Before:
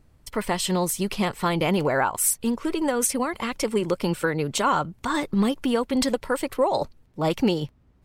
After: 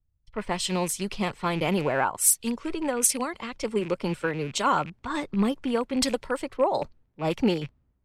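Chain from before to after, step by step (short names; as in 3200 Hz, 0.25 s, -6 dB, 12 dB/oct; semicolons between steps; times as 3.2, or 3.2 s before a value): rattling part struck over -33 dBFS, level -26 dBFS; low-pass opened by the level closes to 2900 Hz, open at -17.5 dBFS; three-band expander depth 70%; gain -3 dB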